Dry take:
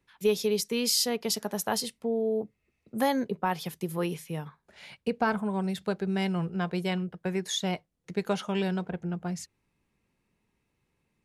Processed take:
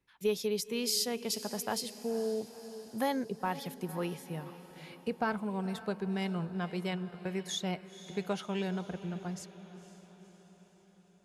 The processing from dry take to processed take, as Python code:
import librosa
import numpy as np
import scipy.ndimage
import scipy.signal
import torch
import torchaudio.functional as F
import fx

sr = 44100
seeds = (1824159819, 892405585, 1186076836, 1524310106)

y = fx.echo_diffused(x, sr, ms=500, feedback_pct=55, wet_db=-14.0)
y = F.gain(torch.from_numpy(y), -5.5).numpy()